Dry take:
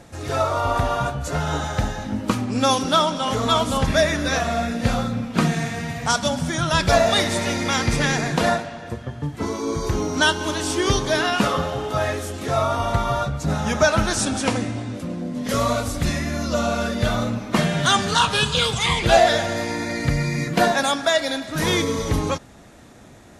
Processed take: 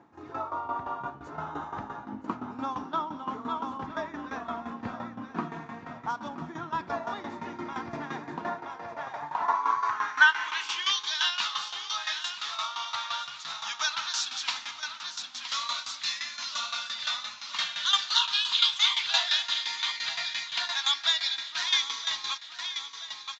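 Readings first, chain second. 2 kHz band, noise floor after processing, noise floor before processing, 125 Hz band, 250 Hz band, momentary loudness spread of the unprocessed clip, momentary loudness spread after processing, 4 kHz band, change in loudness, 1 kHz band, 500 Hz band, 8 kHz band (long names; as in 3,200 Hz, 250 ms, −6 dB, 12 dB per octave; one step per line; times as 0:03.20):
−5.5 dB, −45 dBFS, −39 dBFS, −25.5 dB, −17.5 dB, 8 LU, 14 LU, −1.5 dB, −8.0 dB, −9.0 dB, −21.5 dB, −10.0 dB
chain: in parallel at +2 dB: speech leveller within 3 dB 0.5 s
on the sum: low shelf with overshoot 720 Hz −10 dB, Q 3
on a send: repeating echo 973 ms, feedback 45%, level −8 dB
on the sum: shaped tremolo saw down 5.8 Hz, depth 75%
band-pass filter sweep 340 Hz → 3,900 Hz, 0:08.45–0:11.10
downsampling to 16,000 Hz
high-pass filter 56 Hz
level −1.5 dB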